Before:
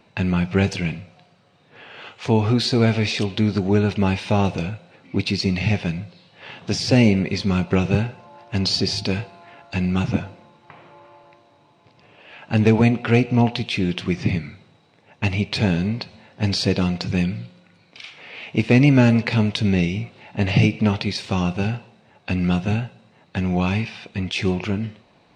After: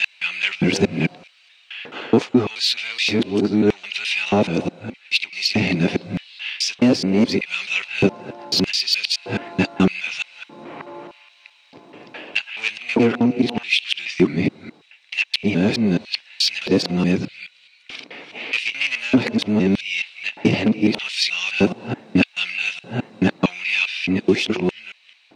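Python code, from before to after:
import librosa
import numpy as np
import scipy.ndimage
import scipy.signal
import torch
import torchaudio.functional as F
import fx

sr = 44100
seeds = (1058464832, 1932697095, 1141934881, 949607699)

y = fx.local_reverse(x, sr, ms=213.0)
y = 10.0 ** (-13.0 / 20.0) * np.tanh(y / 10.0 ** (-13.0 / 20.0))
y = fx.low_shelf(y, sr, hz=140.0, db=11.5)
y = fx.filter_lfo_highpass(y, sr, shape='square', hz=0.81, low_hz=290.0, high_hz=2600.0, q=2.2)
y = fx.rider(y, sr, range_db=4, speed_s=0.5)
y = y * librosa.db_to_amplitude(4.0)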